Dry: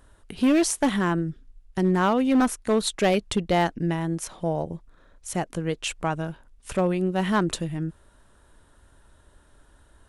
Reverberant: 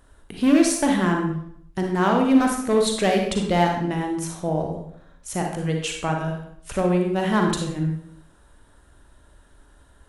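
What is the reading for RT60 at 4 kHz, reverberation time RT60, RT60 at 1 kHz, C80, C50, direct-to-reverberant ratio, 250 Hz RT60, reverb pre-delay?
0.55 s, 0.70 s, 0.65 s, 7.0 dB, 3.5 dB, 1.5 dB, 0.70 s, 35 ms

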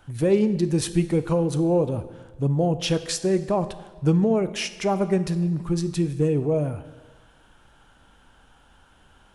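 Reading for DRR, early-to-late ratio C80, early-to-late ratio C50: 11.5 dB, 15.0 dB, 13.5 dB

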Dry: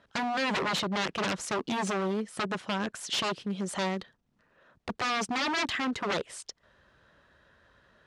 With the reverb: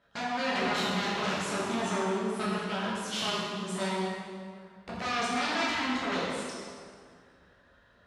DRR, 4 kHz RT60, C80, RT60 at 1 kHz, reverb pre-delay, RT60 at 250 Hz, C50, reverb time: −8.0 dB, 1.5 s, 0.0 dB, 2.0 s, 8 ms, 2.2 s, −2.0 dB, 2.1 s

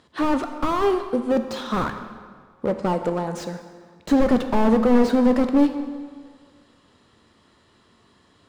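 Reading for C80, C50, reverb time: 10.0 dB, 8.5 dB, 1.8 s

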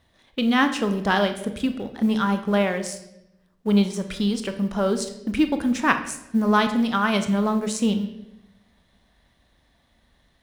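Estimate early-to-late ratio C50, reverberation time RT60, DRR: 10.5 dB, 0.85 s, 7.5 dB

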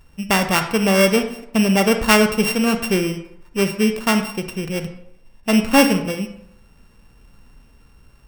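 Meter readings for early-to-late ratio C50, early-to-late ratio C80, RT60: 8.5 dB, 12.0 dB, 0.75 s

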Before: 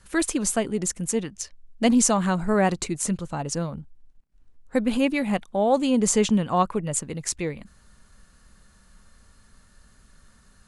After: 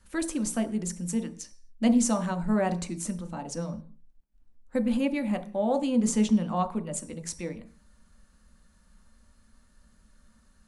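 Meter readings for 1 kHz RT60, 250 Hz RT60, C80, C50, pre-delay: 0.45 s, 0.55 s, 19.0 dB, 14.5 dB, 3 ms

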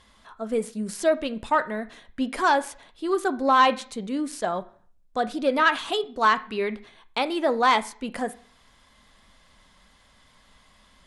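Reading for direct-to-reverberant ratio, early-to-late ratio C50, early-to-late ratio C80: 11.0 dB, 17.0 dB, 22.0 dB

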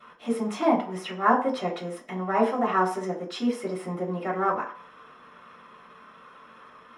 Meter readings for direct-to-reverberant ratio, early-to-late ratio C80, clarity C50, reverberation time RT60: −14.0 dB, 13.5 dB, 9.0 dB, 0.50 s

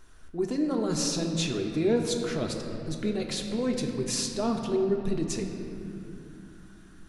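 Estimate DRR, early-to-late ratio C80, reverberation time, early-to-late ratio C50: 1.5 dB, 5.5 dB, 2.8 s, 4.5 dB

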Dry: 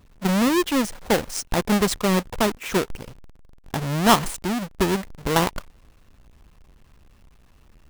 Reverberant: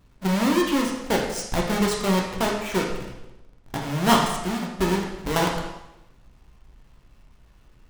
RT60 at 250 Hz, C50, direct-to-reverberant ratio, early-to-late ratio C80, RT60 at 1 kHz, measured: 1.0 s, 3.5 dB, −1.5 dB, 6.0 dB, 0.90 s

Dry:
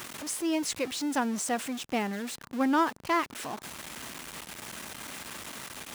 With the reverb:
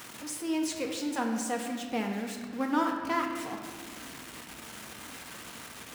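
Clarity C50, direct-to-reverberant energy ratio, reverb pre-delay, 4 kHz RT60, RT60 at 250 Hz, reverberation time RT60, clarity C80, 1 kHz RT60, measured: 4.0 dB, 1.0 dB, 4 ms, 1.2 s, 3.2 s, 2.0 s, 5.5 dB, 1.7 s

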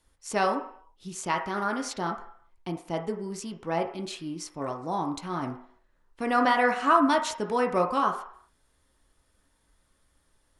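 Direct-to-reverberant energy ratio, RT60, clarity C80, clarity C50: 2.0 dB, 0.60 s, 12.0 dB, 8.5 dB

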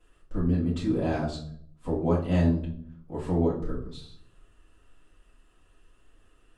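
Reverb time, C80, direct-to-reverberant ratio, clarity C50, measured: 0.60 s, 11.5 dB, −8.5 dB, 7.0 dB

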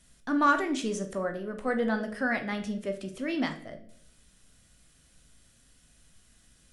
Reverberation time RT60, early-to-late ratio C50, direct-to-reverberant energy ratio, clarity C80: 0.65 s, 11.5 dB, 5.5 dB, 15.0 dB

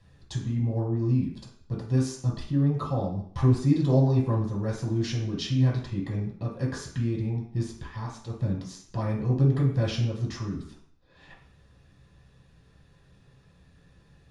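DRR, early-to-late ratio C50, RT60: −5.0 dB, 5.5 dB, 0.55 s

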